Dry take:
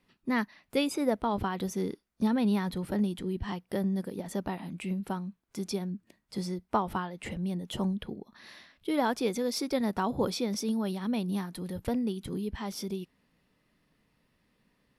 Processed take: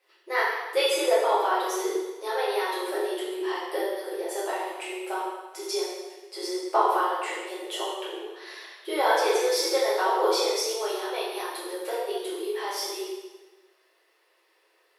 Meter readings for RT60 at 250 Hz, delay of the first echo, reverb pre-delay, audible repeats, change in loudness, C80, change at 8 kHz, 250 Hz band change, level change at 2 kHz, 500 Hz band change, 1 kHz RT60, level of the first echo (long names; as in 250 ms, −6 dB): 1.2 s, no echo audible, 3 ms, no echo audible, +5.0 dB, 2.5 dB, +9.0 dB, −7.0 dB, +9.5 dB, +8.5 dB, 1.2 s, no echo audible